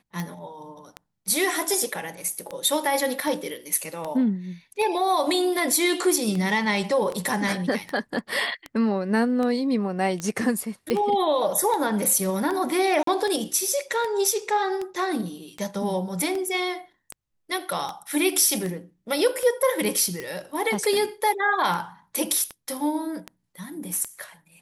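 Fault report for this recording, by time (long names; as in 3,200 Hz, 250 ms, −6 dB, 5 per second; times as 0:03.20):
scratch tick 78 rpm −17 dBFS
0:10.90: click −11 dBFS
0:13.03–0:13.07: drop-out 43 ms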